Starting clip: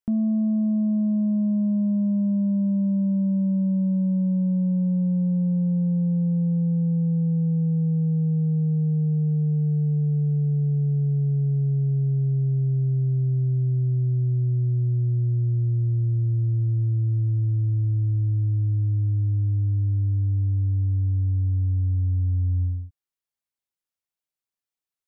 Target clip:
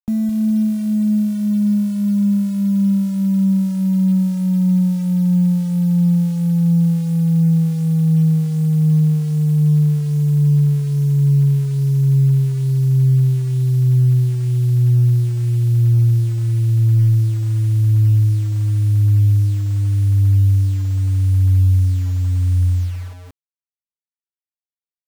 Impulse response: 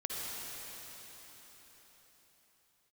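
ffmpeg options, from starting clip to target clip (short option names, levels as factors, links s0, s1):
-filter_complex "[0:a]acrossover=split=240[s0][s1];[s0]aecho=1:1:212|424|636:0.376|0.109|0.0316[s2];[s1]asoftclip=type=tanh:threshold=0.0133[s3];[s2][s3]amix=inputs=2:normalize=0,acrusher=bits=7:mix=0:aa=0.000001,volume=2.24"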